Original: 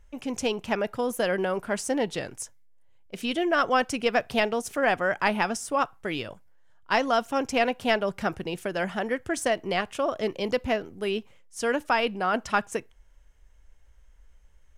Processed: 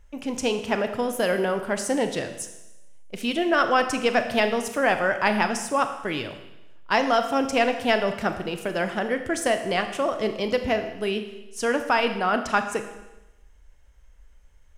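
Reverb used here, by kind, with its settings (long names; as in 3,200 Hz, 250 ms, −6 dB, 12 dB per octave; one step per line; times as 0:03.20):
four-comb reverb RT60 1 s, combs from 26 ms, DRR 7.5 dB
level +2 dB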